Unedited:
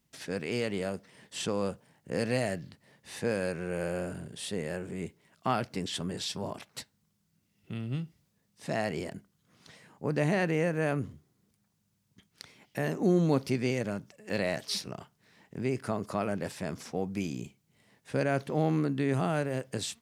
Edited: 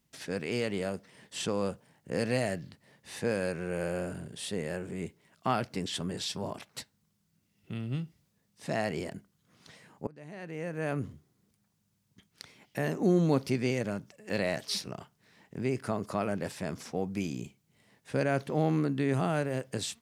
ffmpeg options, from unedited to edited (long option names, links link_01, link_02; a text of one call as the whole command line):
ffmpeg -i in.wav -filter_complex "[0:a]asplit=2[link_01][link_02];[link_01]atrim=end=10.07,asetpts=PTS-STARTPTS,afade=type=out:start_time=10.066:duration=0.004:curve=hsin:silence=0.0668344[link_03];[link_02]atrim=start=10.07,asetpts=PTS-STARTPTS,afade=type=in:duration=0.99:curve=qua:silence=0.0668344[link_04];[link_03][link_04]concat=n=2:v=0:a=1" out.wav